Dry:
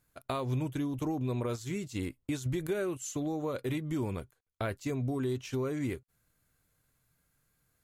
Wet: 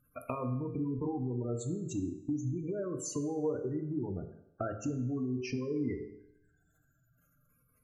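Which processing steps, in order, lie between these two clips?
rippled gain that drifts along the octave scale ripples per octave 0.9, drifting −0.4 Hz, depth 8 dB
hum removal 54.12 Hz, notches 10
gate on every frequency bin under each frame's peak −15 dB strong
dynamic equaliser 260 Hz, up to +5 dB, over −47 dBFS, Q 0.76
in parallel at −2 dB: brickwall limiter −34 dBFS, peak gain reduction 15.5 dB
on the sum: downward compressor, threshold −32 dBFS, peak gain reduction 10 dB
tuned comb filter 300 Hz, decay 0.95 s, mix 70%
on a send at −6.5 dB: convolution reverb RT60 0.85 s, pre-delay 3 ms
on the sum: level +9 dB

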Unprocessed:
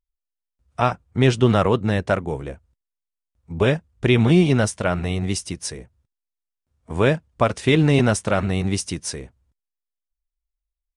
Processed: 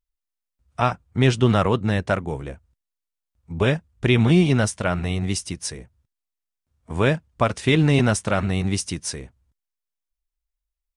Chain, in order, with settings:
parametric band 470 Hz −3 dB 1.4 octaves

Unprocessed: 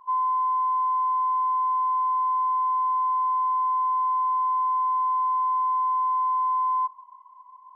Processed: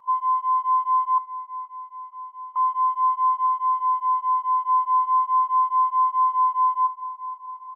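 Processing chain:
0:01.18–0:02.56: formant filter u
on a send: repeating echo 473 ms, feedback 54%, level −16 dB
0:03.46–0:04.69: on the sum: dynamic equaliser 1,100 Hz, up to −3 dB, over −35 dBFS, Q 5.3
through-zero flanger with one copy inverted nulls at 0.79 Hz, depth 2.9 ms
level +4.5 dB

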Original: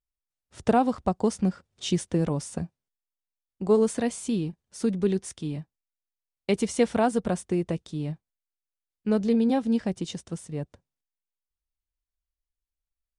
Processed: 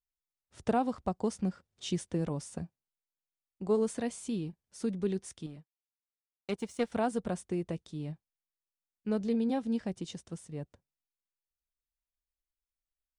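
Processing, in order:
0:05.46–0:06.92: power curve on the samples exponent 1.4
level −7.5 dB

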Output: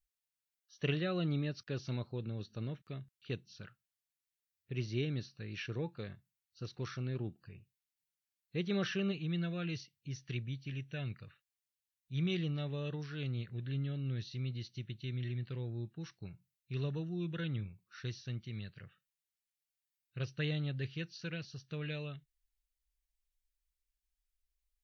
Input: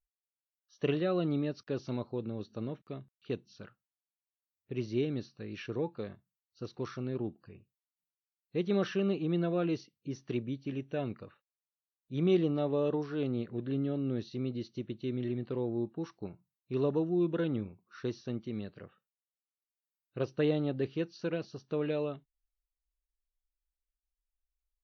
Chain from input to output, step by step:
flat-topped bell 500 Hz −9.5 dB 2.8 octaves, from 0:09.11 −16 dB
level +2.5 dB

